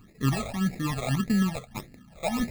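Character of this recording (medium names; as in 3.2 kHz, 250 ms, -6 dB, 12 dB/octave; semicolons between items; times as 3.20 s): aliases and images of a low sample rate 1.5 kHz, jitter 0%; phasing stages 12, 1.7 Hz, lowest notch 290–1100 Hz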